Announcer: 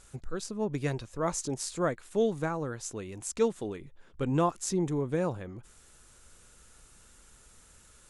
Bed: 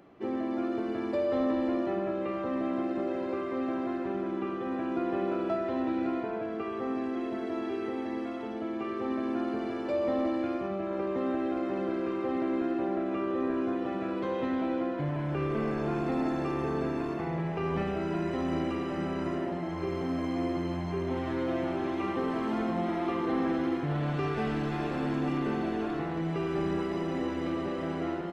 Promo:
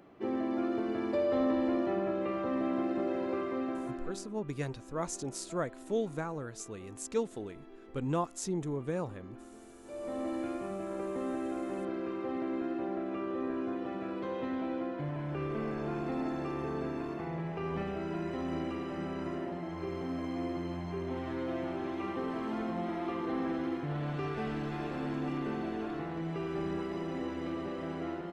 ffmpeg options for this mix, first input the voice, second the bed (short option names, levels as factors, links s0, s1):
-filter_complex "[0:a]adelay=3750,volume=0.562[s0];[1:a]volume=5.01,afade=t=out:st=3.42:d=0.91:silence=0.112202,afade=t=in:st=9.82:d=0.55:silence=0.177828[s1];[s0][s1]amix=inputs=2:normalize=0"